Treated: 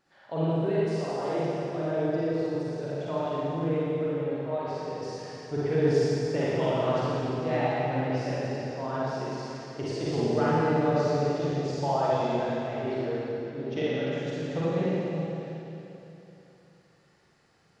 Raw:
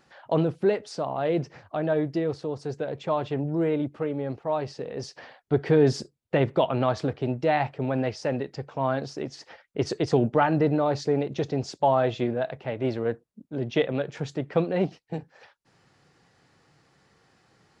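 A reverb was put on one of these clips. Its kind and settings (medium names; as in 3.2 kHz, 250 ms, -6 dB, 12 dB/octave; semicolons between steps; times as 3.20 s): Schroeder reverb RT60 3.1 s, DRR -9 dB; trim -11.5 dB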